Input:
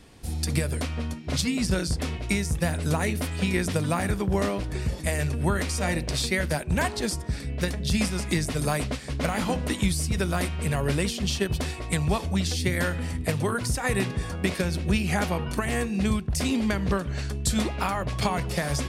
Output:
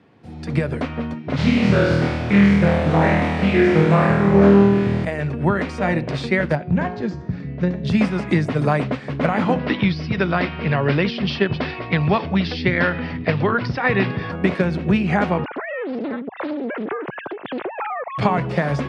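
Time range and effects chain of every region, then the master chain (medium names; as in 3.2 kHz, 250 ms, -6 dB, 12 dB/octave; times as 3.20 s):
1.36–5.05 s: one-bit delta coder 64 kbps, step -34 dBFS + flutter echo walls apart 4.3 m, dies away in 1.4 s + loudspeaker Doppler distortion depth 0.36 ms
6.55–7.84 s: steep low-pass 7.5 kHz 96 dB/octave + bass shelf 300 Hz +10.5 dB + feedback comb 180 Hz, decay 0.62 s, mix 70%
9.59–14.32 s: elliptic low-pass 5.2 kHz + treble shelf 2 kHz +8 dB
15.44–18.18 s: formants replaced by sine waves + compression 8:1, threshold -31 dBFS + loudspeaker Doppler distortion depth 0.89 ms
whole clip: low-pass 2 kHz 12 dB/octave; level rider gain up to 9 dB; high-pass 110 Hz 24 dB/octave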